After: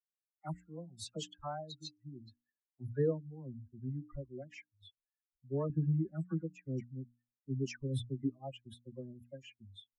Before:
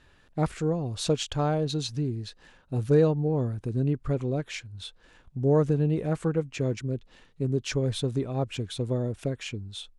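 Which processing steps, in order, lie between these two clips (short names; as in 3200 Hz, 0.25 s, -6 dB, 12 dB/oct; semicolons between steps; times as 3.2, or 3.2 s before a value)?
per-bin expansion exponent 3; 5.62–8.23 resonant low shelf 400 Hz +7 dB, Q 1.5; notches 60/120/180/240/300 Hz; dispersion lows, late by 77 ms, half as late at 1300 Hz; gain -8 dB; Vorbis 192 kbps 44100 Hz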